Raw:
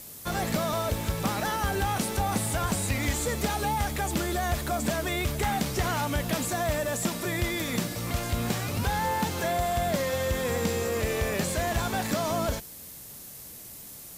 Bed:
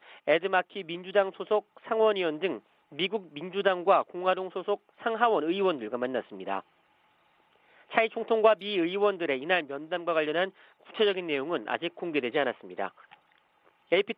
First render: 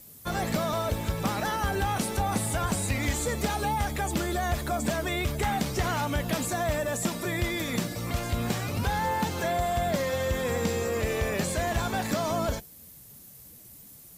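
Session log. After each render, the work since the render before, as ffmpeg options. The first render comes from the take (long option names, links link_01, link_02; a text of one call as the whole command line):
ffmpeg -i in.wav -af "afftdn=noise_reduction=9:noise_floor=-44" out.wav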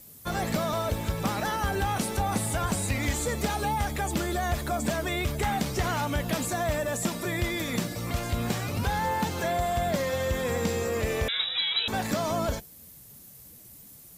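ffmpeg -i in.wav -filter_complex "[0:a]asettb=1/sr,asplit=3[link_01][link_02][link_03];[link_01]atrim=end=11.284[link_04];[link_02]atrim=start=11.28:end=11.88,asetpts=PTS-STARTPTS,afade=type=in:duration=0.004:curve=qsin,afade=type=out:start_time=0.596:duration=0.004:curve=qsin,lowpass=frequency=3400:width_type=q:width=0.5098,lowpass=frequency=3400:width_type=q:width=0.6013,lowpass=frequency=3400:width_type=q:width=0.9,lowpass=frequency=3400:width_type=q:width=2.563,afreqshift=-4000[link_05];[link_03]atrim=start=11.876[link_06];[link_04][link_05]acrossfade=duration=0.004:curve1=hsin:curve2=qsin[link_07];[link_07][link_06]acrossfade=duration=0.004:curve1=qsin:curve2=hsin" out.wav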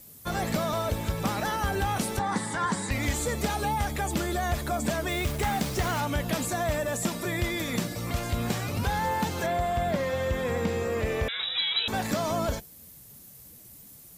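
ffmpeg -i in.wav -filter_complex "[0:a]asettb=1/sr,asplit=3[link_01][link_02][link_03];[link_01]atrim=end=2.194[link_04];[link_02]atrim=start=2.19:end=2.91,asetpts=PTS-STARTPTS,afade=type=in:duration=0.004:curve=qsin,afade=type=out:start_time=0.716:duration=0.004:curve=qsin,highpass=180,equalizer=frequency=180:width_type=q:width=4:gain=4,equalizer=frequency=660:width_type=q:width=4:gain=-9,equalizer=frequency=980:width_type=q:width=4:gain=8,equalizer=frequency=1800:width_type=q:width=4:gain=9,equalizer=frequency=2600:width_type=q:width=4:gain=-9,equalizer=frequency=6300:width_type=q:width=4:gain=-4,lowpass=frequency=8300:width=0.5412,lowpass=frequency=8300:width=1.3066[link_05];[link_03]atrim=start=2.906[link_06];[link_04][link_05]acrossfade=duration=0.004:curve1=hsin:curve2=qsin[link_07];[link_07][link_06]acrossfade=duration=0.004:curve1=qsin:curve2=hsin,asettb=1/sr,asplit=3[link_08][link_09][link_10];[link_08]atrim=end=5.094[link_11];[link_09]atrim=start=5.09:end=6,asetpts=PTS-STARTPTS,afade=type=in:duration=0.004:curve=qsin,afade=type=out:start_time=0.906:duration=0.004:curve=qsin,acrusher=bits=5:mix=0:aa=0.5[link_12];[link_10]atrim=start=5.996[link_13];[link_11][link_12]acrossfade=duration=0.004:curve1=hsin:curve2=qsin[link_14];[link_14][link_13]acrossfade=duration=0.004:curve1=qsin:curve2=hsin,asettb=1/sr,asplit=3[link_15][link_16][link_17];[link_15]atrim=end=9.464[link_18];[link_16]atrim=start=9.46:end=11.43,asetpts=PTS-STARTPTS,afade=type=in:duration=0.004:curve=qsin,afade=type=out:start_time=1.966:duration=0.004:curve=qsin,acrossover=split=3400[link_19][link_20];[link_20]acompressor=threshold=-47dB:ratio=4:attack=1:release=60[link_21];[link_19][link_21]amix=inputs=2:normalize=0[link_22];[link_17]atrim=start=11.426[link_23];[link_18][link_22]acrossfade=duration=0.004:curve1=hsin:curve2=qsin[link_24];[link_24][link_23]acrossfade=duration=0.004:curve1=qsin:curve2=hsin" out.wav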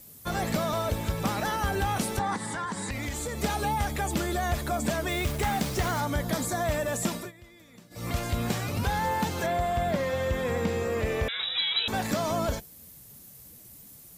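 ffmpeg -i in.wav -filter_complex "[0:a]asettb=1/sr,asplit=3[link_01][link_02][link_03];[link_01]atrim=end=2.354[link_04];[link_02]atrim=start=2.35:end=3.42,asetpts=PTS-STARTPTS,afade=type=in:duration=0.004:curve=qsin,afade=type=out:start_time=1.066:duration=0.004:curve=qsin,acompressor=threshold=-29dB:ratio=6:attack=3.2:release=140:knee=1:detection=peak[link_05];[link_03]atrim=start=3.416[link_06];[link_04][link_05]acrossfade=duration=0.004:curve1=hsin:curve2=qsin[link_07];[link_07][link_06]acrossfade=duration=0.004:curve1=qsin:curve2=hsin,asettb=1/sr,asplit=3[link_08][link_09][link_10];[link_08]atrim=end=5.894[link_11];[link_09]atrim=start=5.89:end=6.64,asetpts=PTS-STARTPTS,afade=type=in:duration=0.004:curve=qsin,afade=type=out:start_time=0.746:duration=0.004:curve=qsin,equalizer=frequency=2700:width=5.9:gain=-13.5[link_12];[link_10]atrim=start=6.636[link_13];[link_11][link_12]acrossfade=duration=0.004:curve1=hsin:curve2=qsin[link_14];[link_14][link_13]acrossfade=duration=0.004:curve1=qsin:curve2=hsin,asplit=3[link_15][link_16][link_17];[link_15]atrim=end=7.32,asetpts=PTS-STARTPTS,afade=type=out:start_time=7.15:duration=0.17:silence=0.0707946[link_18];[link_16]atrim=start=7.32:end=7.9,asetpts=PTS-STARTPTS,volume=-23dB[link_19];[link_17]atrim=start=7.9,asetpts=PTS-STARTPTS,afade=type=in:duration=0.17:silence=0.0707946[link_20];[link_18][link_19][link_20]concat=n=3:v=0:a=1" out.wav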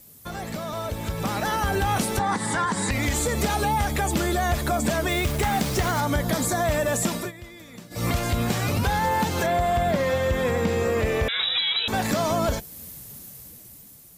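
ffmpeg -i in.wav -af "alimiter=level_in=0.5dB:limit=-24dB:level=0:latency=1:release=288,volume=-0.5dB,dynaudnorm=framelen=340:gausssize=7:maxgain=9.5dB" out.wav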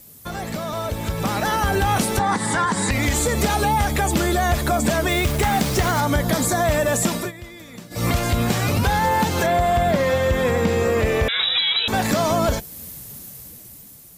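ffmpeg -i in.wav -af "volume=4dB" out.wav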